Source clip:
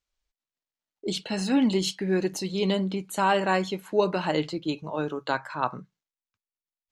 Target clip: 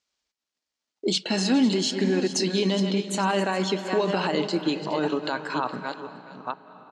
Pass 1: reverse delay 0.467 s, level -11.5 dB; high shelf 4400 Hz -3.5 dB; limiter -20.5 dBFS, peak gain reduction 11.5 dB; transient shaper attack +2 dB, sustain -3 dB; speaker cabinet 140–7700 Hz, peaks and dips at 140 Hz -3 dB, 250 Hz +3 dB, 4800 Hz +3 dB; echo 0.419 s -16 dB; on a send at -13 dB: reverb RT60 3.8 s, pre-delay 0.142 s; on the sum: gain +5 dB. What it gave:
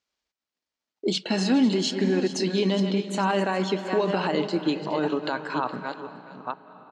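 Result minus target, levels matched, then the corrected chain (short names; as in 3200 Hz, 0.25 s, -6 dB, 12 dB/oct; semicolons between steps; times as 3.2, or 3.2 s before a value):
8000 Hz band -5.0 dB
reverse delay 0.467 s, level -11.5 dB; high shelf 4400 Hz +4.5 dB; limiter -20.5 dBFS, peak gain reduction 12 dB; transient shaper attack +2 dB, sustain -3 dB; speaker cabinet 140–7700 Hz, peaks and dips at 140 Hz -3 dB, 250 Hz +3 dB, 4800 Hz +3 dB; echo 0.419 s -16 dB; on a send at -13 dB: reverb RT60 3.8 s, pre-delay 0.142 s; on the sum: gain +5 dB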